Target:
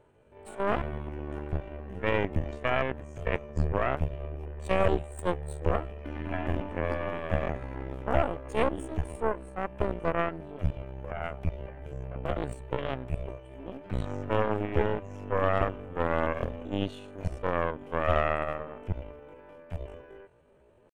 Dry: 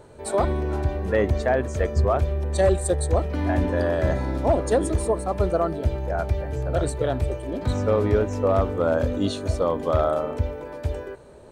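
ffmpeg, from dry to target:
ffmpeg -i in.wav -af "aeval=exprs='0.299*(cos(1*acos(clip(val(0)/0.299,-1,1)))-cos(1*PI/2))+0.15*(cos(2*acos(clip(val(0)/0.299,-1,1)))-cos(2*PI/2))+0.0531*(cos(3*acos(clip(val(0)/0.299,-1,1)))-cos(3*PI/2))':channel_layout=same,atempo=0.55,highshelf=frequency=3500:width_type=q:width=3:gain=-6,volume=-7.5dB" out.wav

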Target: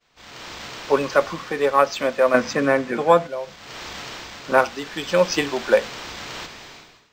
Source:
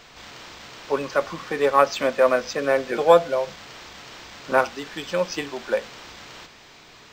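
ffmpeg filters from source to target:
ffmpeg -i in.wav -filter_complex "[0:a]asettb=1/sr,asplit=3[link_01][link_02][link_03];[link_01]atrim=end=2.344[link_04];[link_02]atrim=start=2.34:end=3.27,asetpts=PTS-STARTPTS,afade=type=in:duration=0.004:curve=qsin,afade=type=out:start_time=0.926:duration=0.004:curve=qsin,equalizer=frequency=125:width_type=o:width=1:gain=10,equalizer=frequency=250:width_type=o:width=1:gain=11,equalizer=frequency=1000:width_type=o:width=1:gain=7,equalizer=frequency=2000:width_type=o:width=1:gain=6,equalizer=frequency=8000:width_type=o:width=1:gain=4[link_05];[link_03]atrim=start=3.266[link_06];[link_04][link_05]acrossfade=duration=0.004:curve1=hsin:curve2=qsin[link_07];[link_07][link_06]acrossfade=duration=0.004:curve1=qsin:curve2=hsin,dynaudnorm=framelen=130:gausssize=7:maxgain=10dB,agate=range=-33dB:threshold=-38dB:ratio=3:detection=peak,volume=-1dB" out.wav

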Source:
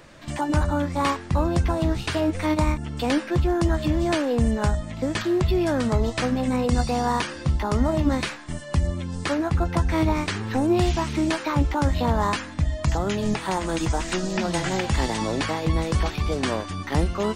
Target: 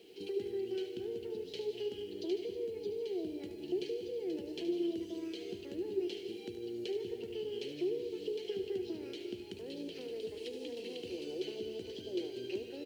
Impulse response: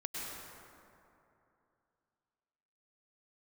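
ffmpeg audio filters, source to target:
-filter_complex "[0:a]equalizer=frequency=350:width=7.5:gain=11.5,acompressor=threshold=-30dB:ratio=5,asplit=3[link_01][link_02][link_03];[link_01]bandpass=frequency=270:width_type=q:width=8,volume=0dB[link_04];[link_02]bandpass=frequency=2290:width_type=q:width=8,volume=-6dB[link_05];[link_03]bandpass=frequency=3010:width_type=q:width=8,volume=-9dB[link_06];[link_04][link_05][link_06]amix=inputs=3:normalize=0,acrusher=bits=11:mix=0:aa=0.000001,aecho=1:1:129:0.211,asplit=2[link_07][link_08];[1:a]atrim=start_sample=2205,highshelf=frequency=4100:gain=10,adelay=99[link_09];[link_08][link_09]afir=irnorm=-1:irlink=0,volume=-10dB[link_10];[link_07][link_10]amix=inputs=2:normalize=0,asetrate=59535,aresample=44100,volume=2.5dB"

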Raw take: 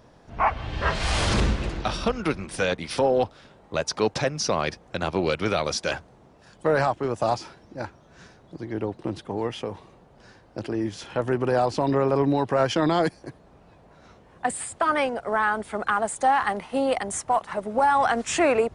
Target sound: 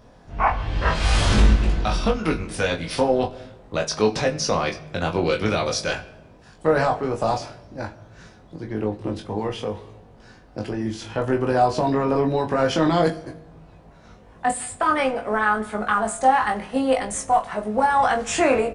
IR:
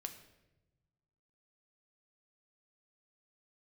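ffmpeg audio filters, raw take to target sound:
-filter_complex "[0:a]lowshelf=frequency=84:gain=8.5,asplit=2[link_01][link_02];[link_02]adelay=19,volume=-5dB[link_03];[link_01][link_03]amix=inputs=2:normalize=0,asplit=2[link_04][link_05];[1:a]atrim=start_sample=2205,adelay=23[link_06];[link_05][link_06]afir=irnorm=-1:irlink=0,volume=-3.5dB[link_07];[link_04][link_07]amix=inputs=2:normalize=0"

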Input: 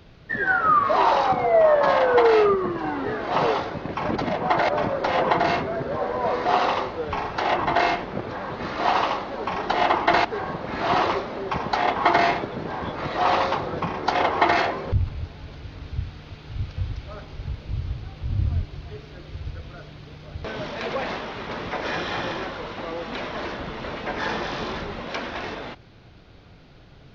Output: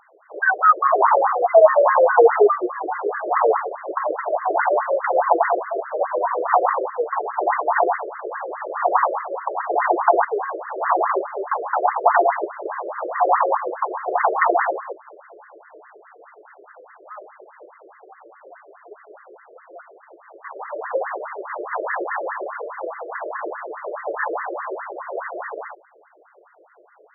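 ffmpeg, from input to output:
ffmpeg -i in.wav -filter_complex "[0:a]asettb=1/sr,asplit=3[link_01][link_02][link_03];[link_01]atrim=end=19.934[link_04];[link_02]atrim=start=19.93:end=20.68,asetpts=PTS-STARTPTS,afade=type=in:duration=0.004:curve=qsin,afade=type=out:start_time=0.746:duration=0.004:curve=qsin,aeval=exprs='abs(val(0))':channel_layout=same[link_05];[link_03]atrim=start=20.676[link_06];[link_04][link_05]acrossfade=duration=0.004:curve1=hsin:curve2=qsin[link_07];[link_07][link_06]acrossfade=duration=0.004:curve1=qsin:curve2=hsin,afftfilt=real='re*between(b*sr/1024,450*pow(1500/450,0.5+0.5*sin(2*PI*4.8*pts/sr))/1.41,450*pow(1500/450,0.5+0.5*sin(2*PI*4.8*pts/sr))*1.41)':imag='im*between(b*sr/1024,450*pow(1500/450,0.5+0.5*sin(2*PI*4.8*pts/sr))/1.41,450*pow(1500/450,0.5+0.5*sin(2*PI*4.8*pts/sr))*1.41)':win_size=1024:overlap=0.75,volume=7.5dB" out.wav

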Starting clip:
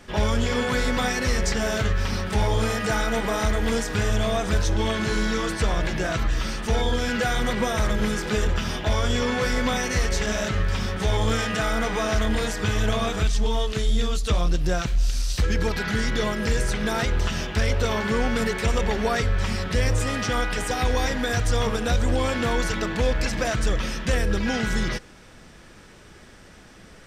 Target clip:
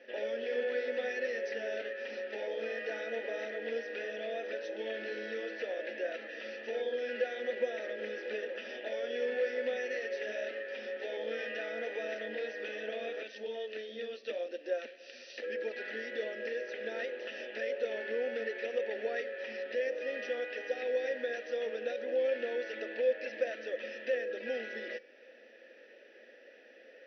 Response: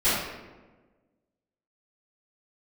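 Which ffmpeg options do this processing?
-filter_complex "[0:a]asplit=3[link_01][link_02][link_03];[link_01]bandpass=frequency=530:width_type=q:width=8,volume=0dB[link_04];[link_02]bandpass=frequency=1840:width_type=q:width=8,volume=-6dB[link_05];[link_03]bandpass=frequency=2480:width_type=q:width=8,volume=-9dB[link_06];[link_04][link_05][link_06]amix=inputs=3:normalize=0,bandreject=frequency=383.7:width_type=h:width=4,bandreject=frequency=767.4:width_type=h:width=4,bandreject=frequency=1151.1:width_type=h:width=4,bandreject=frequency=1534.8:width_type=h:width=4,bandreject=frequency=1918.5:width_type=h:width=4,bandreject=frequency=2302.2:width_type=h:width=4,bandreject=frequency=2685.9:width_type=h:width=4,bandreject=frequency=3069.6:width_type=h:width=4,bandreject=frequency=3453.3:width_type=h:width=4,bandreject=frequency=3837:width_type=h:width=4,bandreject=frequency=4220.7:width_type=h:width=4,bandreject=frequency=4604.4:width_type=h:width=4,bandreject=frequency=4988.1:width_type=h:width=4,bandreject=frequency=5371.8:width_type=h:width=4,bandreject=frequency=5755.5:width_type=h:width=4,bandreject=frequency=6139.2:width_type=h:width=4,bandreject=frequency=6522.9:width_type=h:width=4,bandreject=frequency=6906.6:width_type=h:width=4,bandreject=frequency=7290.3:width_type=h:width=4,bandreject=frequency=7674:width_type=h:width=4,bandreject=frequency=8057.7:width_type=h:width=4,bandreject=frequency=8441.4:width_type=h:width=4,bandreject=frequency=8825.1:width_type=h:width=4,bandreject=frequency=9208.8:width_type=h:width=4,bandreject=frequency=9592.5:width_type=h:width=4,bandreject=frequency=9976.2:width_type=h:width=4,asplit=2[link_07][link_08];[link_08]acompressor=threshold=-49dB:ratio=6,volume=1dB[link_09];[link_07][link_09]amix=inputs=2:normalize=0,afftfilt=real='re*between(b*sr/4096,210,6100)':imag='im*between(b*sr/4096,210,6100)':win_size=4096:overlap=0.75,volume=-2dB"

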